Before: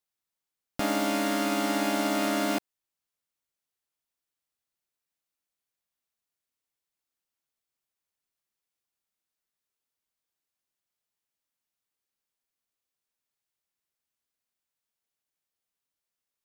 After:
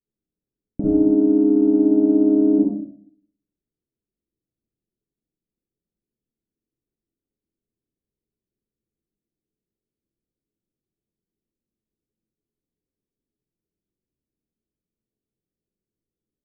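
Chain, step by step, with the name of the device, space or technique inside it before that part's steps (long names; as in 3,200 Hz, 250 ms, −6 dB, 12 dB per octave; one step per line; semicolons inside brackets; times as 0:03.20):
next room (low-pass filter 380 Hz 24 dB per octave; convolution reverb RT60 0.55 s, pre-delay 42 ms, DRR −6 dB)
level +8 dB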